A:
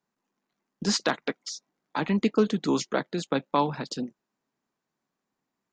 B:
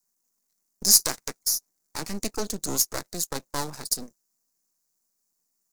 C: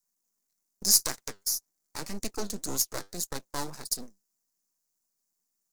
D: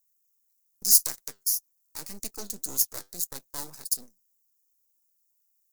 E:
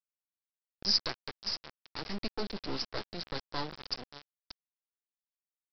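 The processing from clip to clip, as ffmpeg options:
-af "aeval=exprs='max(val(0),0)':c=same,aexciter=amount=15.5:drive=4.2:freq=4.9k,volume=-3.5dB"
-af "flanger=delay=0.5:depth=9.8:regen=73:speed=1.8:shape=sinusoidal"
-af "aemphasis=mode=production:type=50fm,volume=-7.5dB"
-af "aecho=1:1:580|1160:0.266|0.0506,aresample=11025,aeval=exprs='val(0)*gte(abs(val(0)),0.00841)':c=same,aresample=44100,volume=5dB"

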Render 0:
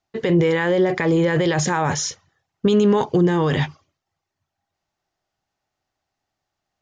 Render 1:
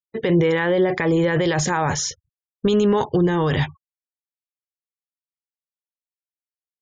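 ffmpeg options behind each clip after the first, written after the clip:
-af "afftfilt=real='re*gte(hypot(re,im),0.01)':imag='im*gte(hypot(re,im),0.01)':win_size=1024:overlap=0.75,asubboost=boost=4:cutoff=94"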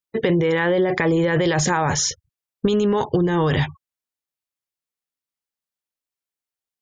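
-af "acompressor=threshold=-20dB:ratio=6,volume=4.5dB"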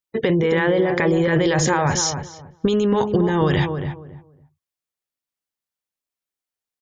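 -filter_complex "[0:a]asplit=2[a][b];[b]adelay=277,lowpass=f=990:p=1,volume=-6dB,asplit=2[c][d];[d]adelay=277,lowpass=f=990:p=1,volume=0.23,asplit=2[e][f];[f]adelay=277,lowpass=f=990:p=1,volume=0.23[g];[a][c][e][g]amix=inputs=4:normalize=0"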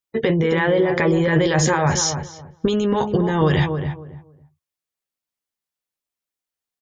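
-filter_complex "[0:a]asplit=2[a][b];[b]adelay=13,volume=-9dB[c];[a][c]amix=inputs=2:normalize=0"

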